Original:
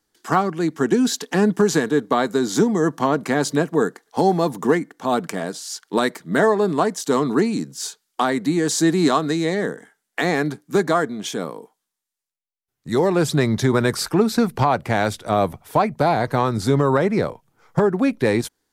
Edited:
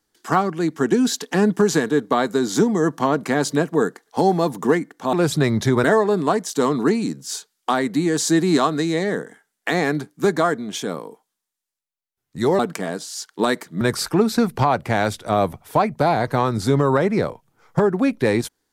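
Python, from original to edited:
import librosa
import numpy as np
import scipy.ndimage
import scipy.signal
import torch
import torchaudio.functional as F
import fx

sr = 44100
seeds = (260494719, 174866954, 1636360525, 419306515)

y = fx.edit(x, sr, fx.swap(start_s=5.13, length_s=1.22, other_s=13.1, other_length_s=0.71), tone=tone)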